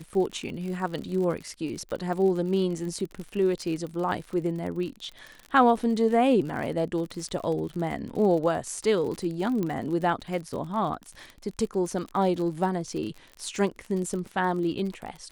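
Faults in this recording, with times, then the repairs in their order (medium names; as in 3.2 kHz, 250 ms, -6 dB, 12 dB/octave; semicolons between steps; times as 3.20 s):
crackle 55 per s -33 dBFS
9.63 s: pop -18 dBFS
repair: de-click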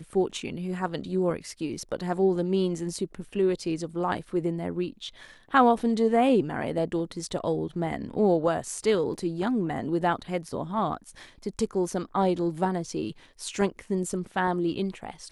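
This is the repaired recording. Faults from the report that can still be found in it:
nothing left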